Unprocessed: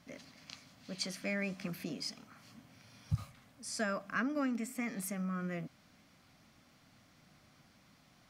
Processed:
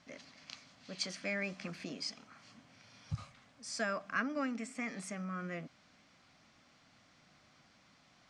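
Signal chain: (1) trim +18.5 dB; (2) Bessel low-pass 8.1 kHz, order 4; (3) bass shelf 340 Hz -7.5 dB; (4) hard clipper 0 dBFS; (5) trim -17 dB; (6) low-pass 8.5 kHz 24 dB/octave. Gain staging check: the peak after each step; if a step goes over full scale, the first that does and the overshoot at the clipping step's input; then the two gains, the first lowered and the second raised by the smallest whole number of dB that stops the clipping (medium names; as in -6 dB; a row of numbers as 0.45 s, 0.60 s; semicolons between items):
-2.0 dBFS, -2.5 dBFS, -3.5 dBFS, -3.5 dBFS, -20.5 dBFS, -20.5 dBFS; nothing clips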